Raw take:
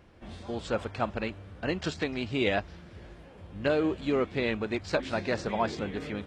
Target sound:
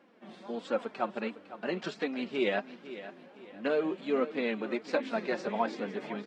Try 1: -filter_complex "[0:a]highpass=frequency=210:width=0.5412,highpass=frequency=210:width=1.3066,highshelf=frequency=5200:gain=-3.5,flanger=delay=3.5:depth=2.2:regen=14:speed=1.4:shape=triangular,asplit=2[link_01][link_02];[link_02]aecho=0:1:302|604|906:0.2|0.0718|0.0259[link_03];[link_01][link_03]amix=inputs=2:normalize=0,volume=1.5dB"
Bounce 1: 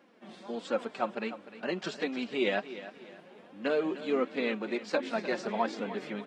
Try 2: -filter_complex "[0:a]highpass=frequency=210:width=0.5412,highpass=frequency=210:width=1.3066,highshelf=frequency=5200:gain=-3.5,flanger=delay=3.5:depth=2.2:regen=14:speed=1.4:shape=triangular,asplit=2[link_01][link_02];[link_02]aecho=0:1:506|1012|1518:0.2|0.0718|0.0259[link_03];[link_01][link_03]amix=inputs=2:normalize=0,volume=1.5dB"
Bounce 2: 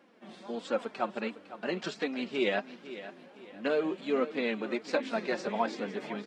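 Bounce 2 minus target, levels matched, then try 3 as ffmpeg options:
8,000 Hz band +4.5 dB
-filter_complex "[0:a]highpass=frequency=210:width=0.5412,highpass=frequency=210:width=1.3066,highshelf=frequency=5200:gain=-11.5,flanger=delay=3.5:depth=2.2:regen=14:speed=1.4:shape=triangular,asplit=2[link_01][link_02];[link_02]aecho=0:1:506|1012|1518:0.2|0.0718|0.0259[link_03];[link_01][link_03]amix=inputs=2:normalize=0,volume=1.5dB"

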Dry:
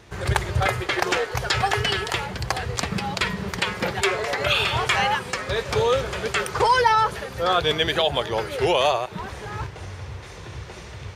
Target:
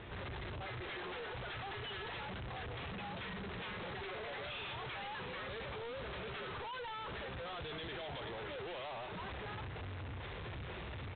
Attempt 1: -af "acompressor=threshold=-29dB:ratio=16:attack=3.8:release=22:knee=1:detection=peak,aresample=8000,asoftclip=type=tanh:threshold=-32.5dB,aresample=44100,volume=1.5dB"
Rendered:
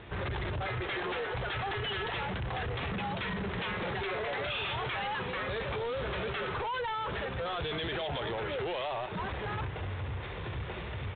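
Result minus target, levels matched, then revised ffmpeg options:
soft clipping: distortion −6 dB
-af "acompressor=threshold=-29dB:ratio=16:attack=3.8:release=22:knee=1:detection=peak,aresample=8000,asoftclip=type=tanh:threshold=-44.5dB,aresample=44100,volume=1.5dB"

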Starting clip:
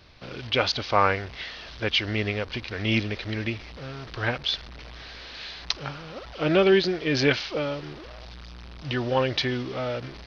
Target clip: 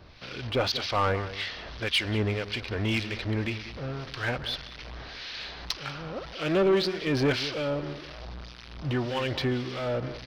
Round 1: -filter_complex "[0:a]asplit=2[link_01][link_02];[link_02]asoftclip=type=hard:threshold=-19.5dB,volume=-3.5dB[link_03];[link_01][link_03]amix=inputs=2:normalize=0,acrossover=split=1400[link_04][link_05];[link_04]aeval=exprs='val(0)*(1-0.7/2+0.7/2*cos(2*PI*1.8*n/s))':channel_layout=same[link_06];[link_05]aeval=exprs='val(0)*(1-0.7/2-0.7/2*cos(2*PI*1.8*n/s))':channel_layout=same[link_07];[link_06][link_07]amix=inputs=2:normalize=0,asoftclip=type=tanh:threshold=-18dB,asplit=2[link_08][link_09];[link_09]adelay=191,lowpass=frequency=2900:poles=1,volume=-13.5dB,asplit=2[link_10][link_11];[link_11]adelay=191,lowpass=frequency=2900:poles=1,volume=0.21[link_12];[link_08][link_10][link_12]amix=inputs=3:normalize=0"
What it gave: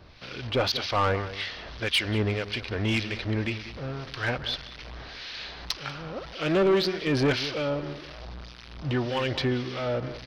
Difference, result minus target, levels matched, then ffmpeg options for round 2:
hard clipping: distortion −7 dB
-filter_complex "[0:a]asplit=2[link_01][link_02];[link_02]asoftclip=type=hard:threshold=-30.5dB,volume=-3.5dB[link_03];[link_01][link_03]amix=inputs=2:normalize=0,acrossover=split=1400[link_04][link_05];[link_04]aeval=exprs='val(0)*(1-0.7/2+0.7/2*cos(2*PI*1.8*n/s))':channel_layout=same[link_06];[link_05]aeval=exprs='val(0)*(1-0.7/2-0.7/2*cos(2*PI*1.8*n/s))':channel_layout=same[link_07];[link_06][link_07]amix=inputs=2:normalize=0,asoftclip=type=tanh:threshold=-18dB,asplit=2[link_08][link_09];[link_09]adelay=191,lowpass=frequency=2900:poles=1,volume=-13.5dB,asplit=2[link_10][link_11];[link_11]adelay=191,lowpass=frequency=2900:poles=1,volume=0.21[link_12];[link_08][link_10][link_12]amix=inputs=3:normalize=0"

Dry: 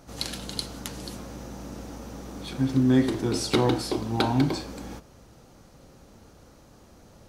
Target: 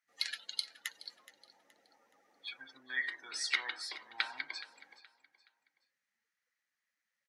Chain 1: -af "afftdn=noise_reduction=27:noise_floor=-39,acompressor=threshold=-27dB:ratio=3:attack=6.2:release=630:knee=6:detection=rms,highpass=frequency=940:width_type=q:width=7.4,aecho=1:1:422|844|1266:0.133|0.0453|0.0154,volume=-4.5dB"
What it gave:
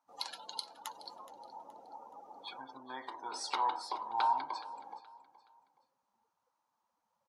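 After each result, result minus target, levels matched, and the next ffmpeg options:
1,000 Hz band +17.0 dB; downward compressor: peak gain reduction +4.5 dB
-af "afftdn=noise_reduction=27:noise_floor=-39,acompressor=threshold=-27dB:ratio=3:attack=6.2:release=630:knee=6:detection=rms,highpass=frequency=1900:width_type=q:width=7.4,aecho=1:1:422|844|1266:0.133|0.0453|0.0154,volume=-4.5dB"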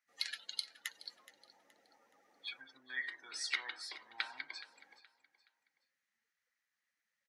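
downward compressor: peak gain reduction +4.5 dB
-af "afftdn=noise_reduction=27:noise_floor=-39,acompressor=threshold=-20dB:ratio=3:attack=6.2:release=630:knee=6:detection=rms,highpass=frequency=1900:width_type=q:width=7.4,aecho=1:1:422|844|1266:0.133|0.0453|0.0154,volume=-4.5dB"

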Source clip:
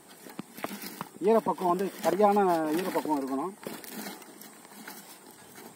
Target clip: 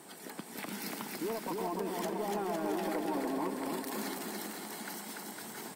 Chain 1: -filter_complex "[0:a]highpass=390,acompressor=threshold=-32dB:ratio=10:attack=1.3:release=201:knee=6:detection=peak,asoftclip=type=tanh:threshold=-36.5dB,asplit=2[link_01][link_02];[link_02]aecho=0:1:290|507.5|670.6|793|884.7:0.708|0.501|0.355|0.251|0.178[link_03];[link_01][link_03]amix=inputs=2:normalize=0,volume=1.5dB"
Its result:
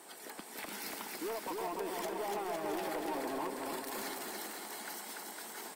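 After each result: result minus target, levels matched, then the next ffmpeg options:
125 Hz band −8.0 dB; soft clipping: distortion +9 dB
-filter_complex "[0:a]highpass=120,acompressor=threshold=-32dB:ratio=10:attack=1.3:release=201:knee=6:detection=peak,asoftclip=type=tanh:threshold=-36.5dB,asplit=2[link_01][link_02];[link_02]aecho=0:1:290|507.5|670.6|793|884.7:0.708|0.501|0.355|0.251|0.178[link_03];[link_01][link_03]amix=inputs=2:normalize=0,volume=1.5dB"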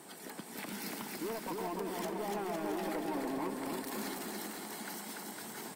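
soft clipping: distortion +8 dB
-filter_complex "[0:a]highpass=120,acompressor=threshold=-32dB:ratio=10:attack=1.3:release=201:knee=6:detection=peak,asoftclip=type=tanh:threshold=-30dB,asplit=2[link_01][link_02];[link_02]aecho=0:1:290|507.5|670.6|793|884.7:0.708|0.501|0.355|0.251|0.178[link_03];[link_01][link_03]amix=inputs=2:normalize=0,volume=1.5dB"

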